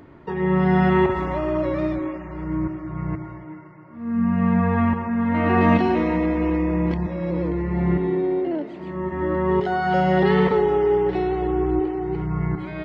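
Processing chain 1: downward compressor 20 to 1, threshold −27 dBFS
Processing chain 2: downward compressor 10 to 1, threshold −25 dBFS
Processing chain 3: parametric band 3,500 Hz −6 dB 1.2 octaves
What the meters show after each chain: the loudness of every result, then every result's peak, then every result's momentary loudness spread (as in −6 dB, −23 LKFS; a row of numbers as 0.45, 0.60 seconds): −32.0, −29.5, −22.0 LKFS; −19.0, −18.0, −5.5 dBFS; 3, 4, 11 LU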